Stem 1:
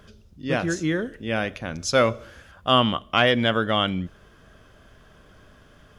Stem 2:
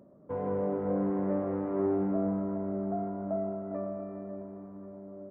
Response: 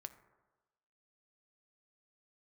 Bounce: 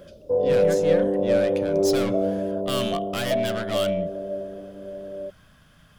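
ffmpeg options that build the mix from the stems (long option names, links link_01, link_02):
-filter_complex "[0:a]aeval=exprs='(tanh(17.8*val(0)+0.35)-tanh(0.35))/17.8':channel_layout=same,equalizer=frequency=160:width_type=o:width=0.67:gain=7,equalizer=frequency=400:width_type=o:width=0.67:gain=-10,equalizer=frequency=6300:width_type=o:width=0.67:gain=-5,volume=-3dB[link_01];[1:a]lowpass=frequency=550:width_type=q:width=4.9,equalizer=frequency=230:width=4.5:gain=-6.5,volume=2.5dB[link_02];[link_01][link_02]amix=inputs=2:normalize=0,highshelf=frequency=3200:gain=9.5"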